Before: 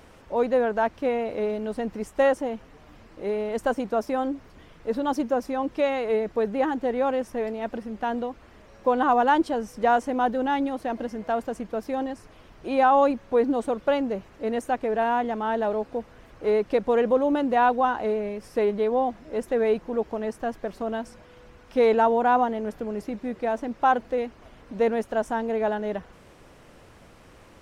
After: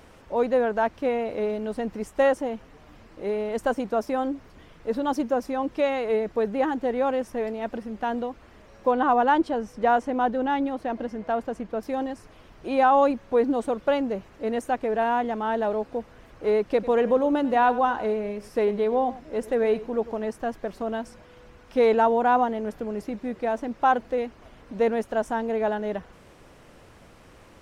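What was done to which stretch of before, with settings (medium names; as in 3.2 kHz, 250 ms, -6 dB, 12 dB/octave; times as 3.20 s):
8.91–11.83 s: low-pass 3.9 kHz 6 dB/octave
16.69–20.24 s: delay 97 ms -16.5 dB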